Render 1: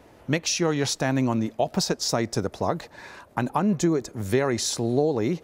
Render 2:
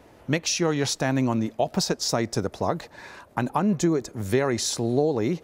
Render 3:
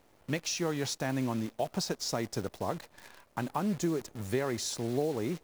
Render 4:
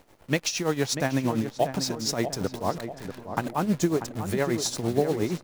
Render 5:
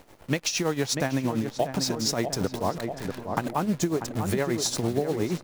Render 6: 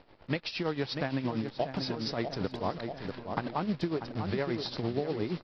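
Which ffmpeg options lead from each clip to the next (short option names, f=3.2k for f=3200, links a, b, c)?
-af anull
-af "acrusher=bits=7:dc=4:mix=0:aa=0.000001,volume=-8.5dB"
-filter_complex "[0:a]tremolo=f=8.6:d=0.73,asplit=2[a][b];[b]adelay=640,lowpass=f=1.5k:p=1,volume=-8.5dB,asplit=2[c][d];[d]adelay=640,lowpass=f=1.5k:p=1,volume=0.51,asplit=2[e][f];[f]adelay=640,lowpass=f=1.5k:p=1,volume=0.51,asplit=2[g][h];[h]adelay=640,lowpass=f=1.5k:p=1,volume=0.51,asplit=2[i][j];[j]adelay=640,lowpass=f=1.5k:p=1,volume=0.51,asplit=2[k][l];[l]adelay=640,lowpass=f=1.5k:p=1,volume=0.51[m];[a][c][e][g][i][k][m]amix=inputs=7:normalize=0,volume=9dB"
-af "acompressor=threshold=-27dB:ratio=4,volume=4.5dB"
-af "aresample=11025,acrusher=bits=5:mode=log:mix=0:aa=0.000001,aresample=44100,volume=-5.5dB" -ar 32000 -c:a aac -b:a 32k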